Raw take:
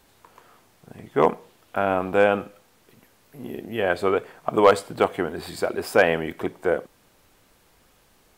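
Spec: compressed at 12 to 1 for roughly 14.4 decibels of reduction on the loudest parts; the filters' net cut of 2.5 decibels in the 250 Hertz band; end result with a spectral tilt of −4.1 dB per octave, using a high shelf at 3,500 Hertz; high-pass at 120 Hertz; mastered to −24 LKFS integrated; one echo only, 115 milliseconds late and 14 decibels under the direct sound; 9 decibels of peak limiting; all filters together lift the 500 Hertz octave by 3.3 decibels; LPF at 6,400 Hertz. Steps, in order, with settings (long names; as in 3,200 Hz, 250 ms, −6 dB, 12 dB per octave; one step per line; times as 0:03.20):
high-pass filter 120 Hz
low-pass filter 6,400 Hz
parametric band 250 Hz −6 dB
parametric band 500 Hz +5 dB
high-shelf EQ 3,500 Hz +6.5 dB
downward compressor 12 to 1, threshold −22 dBFS
brickwall limiter −17.5 dBFS
single-tap delay 115 ms −14 dB
level +8 dB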